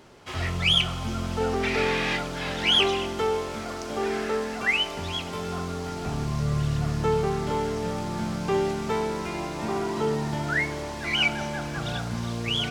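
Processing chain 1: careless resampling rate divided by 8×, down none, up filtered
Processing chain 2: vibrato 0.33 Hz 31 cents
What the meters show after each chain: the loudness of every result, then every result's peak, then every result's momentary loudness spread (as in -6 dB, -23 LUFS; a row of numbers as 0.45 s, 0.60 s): -27.0 LUFS, -26.5 LUFS; -10.5 dBFS, -10.5 dBFS; 10 LU, 11 LU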